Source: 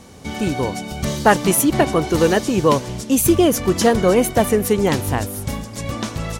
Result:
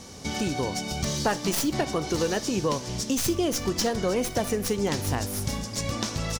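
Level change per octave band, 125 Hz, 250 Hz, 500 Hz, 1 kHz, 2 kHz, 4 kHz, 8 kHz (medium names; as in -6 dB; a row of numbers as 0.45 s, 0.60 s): -8.0 dB, -10.0 dB, -10.5 dB, -10.5 dB, -9.5 dB, -3.0 dB, -6.0 dB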